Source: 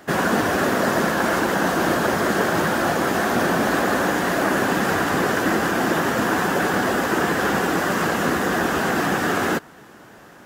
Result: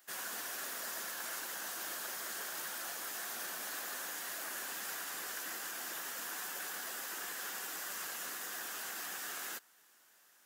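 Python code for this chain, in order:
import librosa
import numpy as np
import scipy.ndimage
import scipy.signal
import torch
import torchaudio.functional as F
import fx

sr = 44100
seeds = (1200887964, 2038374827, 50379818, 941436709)

y = np.diff(x, prepend=0.0)
y = F.gain(torch.from_numpy(y), -8.5).numpy()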